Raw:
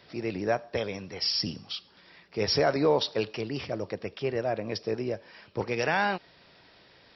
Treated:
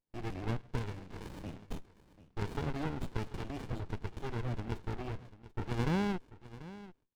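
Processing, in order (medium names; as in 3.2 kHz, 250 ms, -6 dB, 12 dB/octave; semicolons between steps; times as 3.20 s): high-pass 120 Hz 6 dB/octave; gate -45 dBFS, range -32 dB; elliptic low-pass 3.9 kHz, stop band 40 dB; bass shelf 290 Hz -11 dB; compression, threshold -29 dBFS, peak gain reduction 7 dB; on a send: delay 739 ms -16.5 dB; on the sum: sliding maximum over 65 samples; trim +2 dB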